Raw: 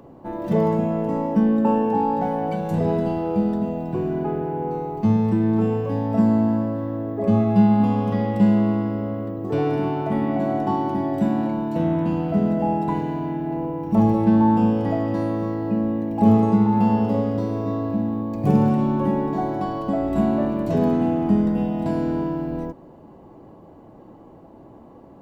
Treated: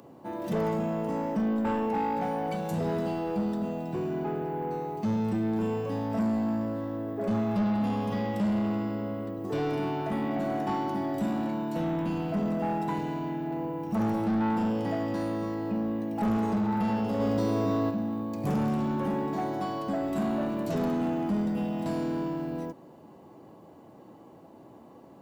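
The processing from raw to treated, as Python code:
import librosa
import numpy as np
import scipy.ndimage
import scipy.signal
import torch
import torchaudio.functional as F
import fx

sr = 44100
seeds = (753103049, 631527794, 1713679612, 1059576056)

y = scipy.signal.sosfilt(scipy.signal.butter(2, 110.0, 'highpass', fs=sr, output='sos'), x)
y = fx.high_shelf(y, sr, hz=2600.0, db=11.5)
y = 10.0 ** (-17.5 / 20.0) * np.tanh(y / 10.0 ** (-17.5 / 20.0))
y = fx.env_flatten(y, sr, amount_pct=70, at=(17.19, 17.89), fade=0.02)
y = y * 10.0 ** (-5.5 / 20.0)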